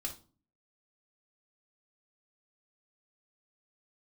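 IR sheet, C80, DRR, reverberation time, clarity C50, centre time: 18.0 dB, 0.5 dB, no single decay rate, 10.5 dB, 13 ms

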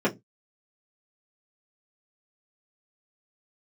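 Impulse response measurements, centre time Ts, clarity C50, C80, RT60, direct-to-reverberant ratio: 14 ms, 19.5 dB, 29.0 dB, no single decay rate, -7.0 dB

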